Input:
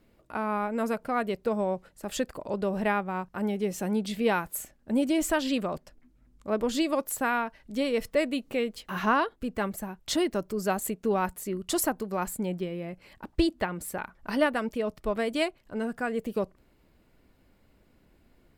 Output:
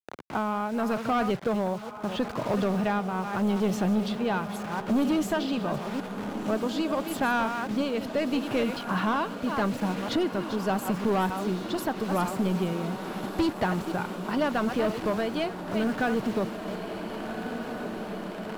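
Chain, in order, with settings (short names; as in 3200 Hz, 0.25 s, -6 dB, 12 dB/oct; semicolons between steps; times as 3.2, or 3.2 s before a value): reverse delay 0.24 s, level -12.5 dB; low-pass opened by the level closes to 310 Hz, open at -26 dBFS; graphic EQ 125/250/500/1000/2000/8000 Hz +12/-3/-9/-4/-11/-10 dB; vibrato 1.7 Hz 29 cents; bit-crush 9-bit; tremolo 0.81 Hz, depth 65%; overdrive pedal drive 31 dB, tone 1900 Hz, clips at -9.5 dBFS; diffused feedback echo 1.572 s, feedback 69%, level -12 dB; three-band squash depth 40%; gain -5 dB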